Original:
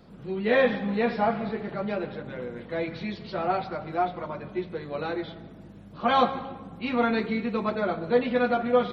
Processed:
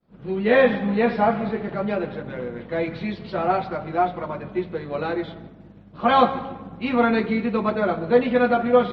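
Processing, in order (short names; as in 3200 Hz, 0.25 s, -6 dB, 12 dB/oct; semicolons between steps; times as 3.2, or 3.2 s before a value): expander -42 dBFS; in parallel at -8.5 dB: crossover distortion -44.5 dBFS; on the sum: air absorption 150 m; gain +3 dB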